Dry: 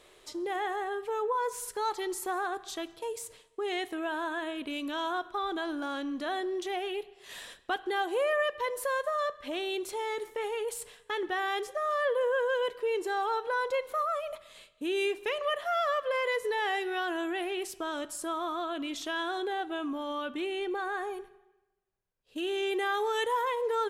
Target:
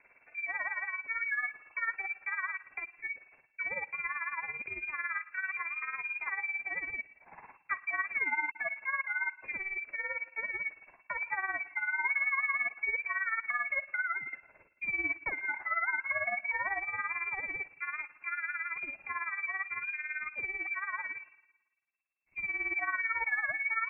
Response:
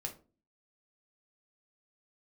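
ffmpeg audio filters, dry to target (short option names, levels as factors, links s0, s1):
-filter_complex "[0:a]tremolo=f=18:d=0.71,asettb=1/sr,asplit=3[s0][s1][s2];[s0]atrim=end=8.054[s3];[s1]atrim=start=8.05:end=8.56,asetpts=PTS-STARTPTS,afade=t=in:d=0.004:c=qsin,afade=t=out:st=0.506:d=0.004:c=qsin,aeval=exprs='sgn(val(0))*max(abs(val(0))-0.00447,0)':c=same[s4];[s2]atrim=start=8.556[s5];[s3][s4]acrossfade=d=0.004:c1=hsin:c2=qsin[s6];[s6][s5]acrossfade=d=0.004:c1=qsin:c2=hsin,lowpass=f=2300:t=q:w=0.5098,lowpass=f=2300:t=q:w=0.6013,lowpass=f=2300:t=q:w=0.9,lowpass=f=2300:t=q:w=2.563,afreqshift=-2700"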